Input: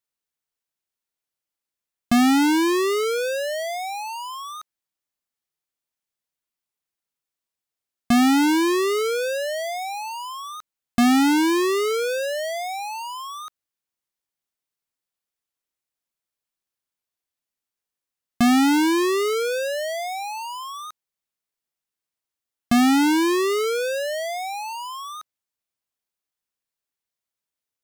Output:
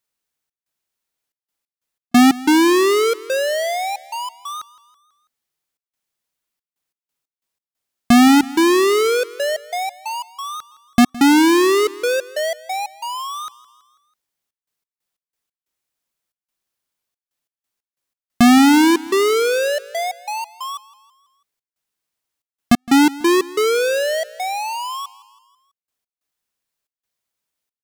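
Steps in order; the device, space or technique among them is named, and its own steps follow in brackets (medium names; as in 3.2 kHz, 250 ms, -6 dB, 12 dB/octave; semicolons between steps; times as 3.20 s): trance gate with a delay (trance gate "xxx.xxxx.x.x.x.x" 91 bpm -60 dB; feedback delay 164 ms, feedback 53%, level -20 dB); trim +6.5 dB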